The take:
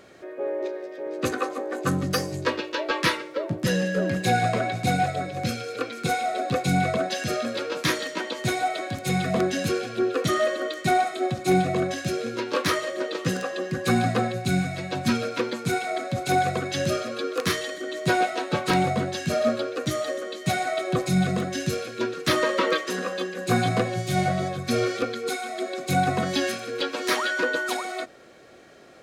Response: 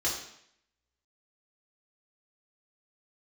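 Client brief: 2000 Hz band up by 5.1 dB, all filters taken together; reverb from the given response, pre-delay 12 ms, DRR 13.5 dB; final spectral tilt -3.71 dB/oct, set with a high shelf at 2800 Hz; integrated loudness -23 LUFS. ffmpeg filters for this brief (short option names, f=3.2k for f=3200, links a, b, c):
-filter_complex "[0:a]equalizer=f=2k:t=o:g=8.5,highshelf=f=2.8k:g=-5,asplit=2[a][b];[1:a]atrim=start_sample=2205,adelay=12[c];[b][c]afir=irnorm=-1:irlink=0,volume=-21dB[d];[a][d]amix=inputs=2:normalize=0,volume=1.5dB"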